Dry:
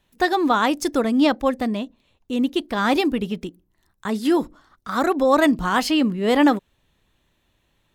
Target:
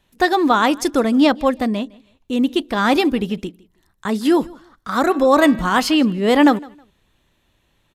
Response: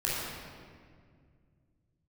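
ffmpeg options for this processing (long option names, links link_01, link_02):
-filter_complex "[0:a]asettb=1/sr,asplit=3[link_01][link_02][link_03];[link_01]atrim=end=5.034[link_04];[link_02]atrim=start=5.03:end=5.73,asetpts=PTS-STARTPTS,afade=type=in:duration=0.004:curve=qsin,afade=type=out:start_time=0.696:duration=0.004:curve=qsin,bandreject=frequency=113.4:width_type=h:width=4,bandreject=frequency=226.8:width_type=h:width=4,bandreject=frequency=340.2:width_type=h:width=4,bandreject=frequency=453.6:width_type=h:width=4,bandreject=frequency=567:width_type=h:width=4,bandreject=frequency=680.4:width_type=h:width=4,bandreject=frequency=793.8:width_type=h:width=4,bandreject=frequency=907.2:width_type=h:width=4,bandreject=frequency=1020.6:width_type=h:width=4,bandreject=frequency=1134:width_type=h:width=4,bandreject=frequency=1247.4:width_type=h:width=4,bandreject=frequency=1360.8:width_type=h:width=4,bandreject=frequency=1474.2:width_type=h:width=4,bandreject=frequency=1587.6:width_type=h:width=4,bandreject=frequency=1701:width_type=h:width=4,bandreject=frequency=1814.4:width_type=h:width=4,bandreject=frequency=1927.8:width_type=h:width=4,bandreject=frequency=2041.2:width_type=h:width=4,bandreject=frequency=2154.6:width_type=h:width=4,bandreject=frequency=2268:width_type=h:width=4,bandreject=frequency=2381.4:width_type=h:width=4,bandreject=frequency=2494.8:width_type=h:width=4,bandreject=frequency=2608.2:width_type=h:width=4,bandreject=frequency=2721.6:width_type=h:width=4,bandreject=frequency=2835:width_type=h:width=4,bandreject=frequency=2948.4:width_type=h:width=4,bandreject=frequency=3061.8:width_type=h:width=4,bandreject=frequency=3175.2:width_type=h:width=4,bandreject=frequency=3288.6:width_type=h:width=4,bandreject=frequency=3402:width_type=h:width=4,bandreject=frequency=3515.4:width_type=h:width=4,bandreject=frequency=3628.8:width_type=h:width=4,bandreject=frequency=3742.2:width_type=h:width=4,bandreject=frequency=3855.6:width_type=h:width=4,bandreject=frequency=3969:width_type=h:width=4,bandreject=frequency=4082.4:width_type=h:width=4,bandreject=frequency=4195.8:width_type=h:width=4[link_05];[link_03]atrim=start=5.726[link_06];[link_04][link_05]acrossfade=duration=0.004:curve1=hsin:curve2=qsin[link_07];[link_07][link_06]acrossfade=duration=0.004:curve1=qsin:curve2=hsin,asplit=2[link_08][link_09];[link_09]aecho=0:1:159|318:0.0668|0.0154[link_10];[link_08][link_10]amix=inputs=2:normalize=0,aresample=32000,aresample=44100,volume=3.5dB"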